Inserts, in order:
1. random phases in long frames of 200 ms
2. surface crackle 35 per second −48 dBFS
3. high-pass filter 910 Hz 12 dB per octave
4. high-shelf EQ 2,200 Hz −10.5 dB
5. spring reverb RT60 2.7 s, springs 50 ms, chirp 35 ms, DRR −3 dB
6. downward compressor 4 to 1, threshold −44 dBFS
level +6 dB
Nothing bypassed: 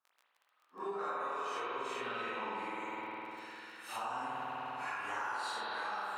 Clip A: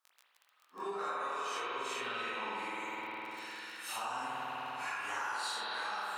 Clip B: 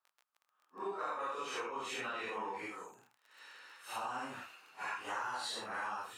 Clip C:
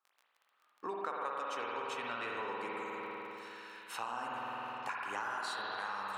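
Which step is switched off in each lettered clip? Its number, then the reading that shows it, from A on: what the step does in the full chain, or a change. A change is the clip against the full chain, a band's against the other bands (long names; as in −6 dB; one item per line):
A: 4, 8 kHz band +8.0 dB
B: 5, change in momentary loudness spread +7 LU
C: 1, change in crest factor +3.0 dB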